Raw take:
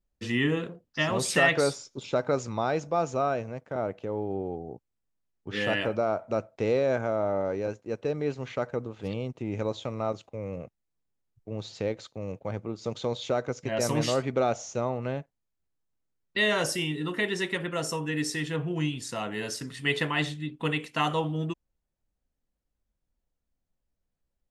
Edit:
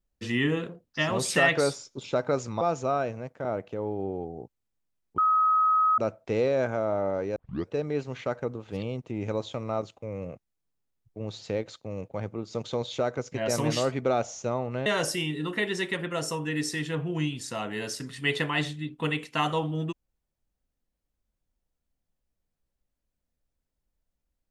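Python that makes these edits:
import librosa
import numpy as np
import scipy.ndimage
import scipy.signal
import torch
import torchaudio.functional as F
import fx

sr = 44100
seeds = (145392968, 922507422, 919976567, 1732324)

y = fx.edit(x, sr, fx.cut(start_s=2.61, length_s=0.31),
    fx.bleep(start_s=5.49, length_s=0.8, hz=1270.0, db=-19.0),
    fx.tape_start(start_s=7.67, length_s=0.33),
    fx.cut(start_s=15.17, length_s=1.3), tone=tone)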